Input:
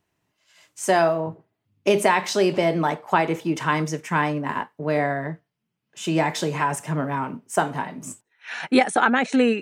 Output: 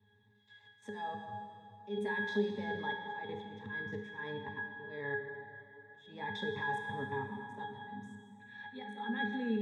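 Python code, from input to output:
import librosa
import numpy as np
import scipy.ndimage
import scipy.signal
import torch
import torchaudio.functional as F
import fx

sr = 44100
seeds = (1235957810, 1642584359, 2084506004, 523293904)

y = fx.peak_eq(x, sr, hz=470.0, db=-9.5, octaves=2.8)
y = fx.level_steps(y, sr, step_db=16)
y = fx.auto_swell(y, sr, attack_ms=227.0)
y = fx.highpass(y, sr, hz=140.0, slope=6)
y = fx.peak_eq(y, sr, hz=3700.0, db=11.5, octaves=0.21)
y = fx.octave_resonator(y, sr, note='G#', decay_s=0.33)
y = fx.rev_plate(y, sr, seeds[0], rt60_s=1.9, hf_ratio=0.95, predelay_ms=0, drr_db=4.5)
y = fx.band_squash(y, sr, depth_pct=40)
y = y * 10.0 ** (16.5 / 20.0)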